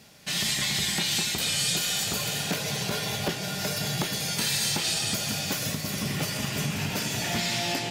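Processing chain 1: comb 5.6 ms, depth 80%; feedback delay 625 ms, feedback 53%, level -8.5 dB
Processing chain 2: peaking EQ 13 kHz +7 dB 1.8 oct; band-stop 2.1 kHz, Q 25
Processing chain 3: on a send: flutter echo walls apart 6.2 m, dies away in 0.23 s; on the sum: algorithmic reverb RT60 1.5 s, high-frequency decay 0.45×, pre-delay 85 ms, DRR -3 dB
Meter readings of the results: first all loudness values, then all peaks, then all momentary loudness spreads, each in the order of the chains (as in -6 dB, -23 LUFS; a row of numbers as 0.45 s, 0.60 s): -23.5 LUFS, -23.5 LUFS, -22.5 LUFS; -11.0 dBFS, -11.0 dBFS, -10.0 dBFS; 4 LU, 6 LU, 4 LU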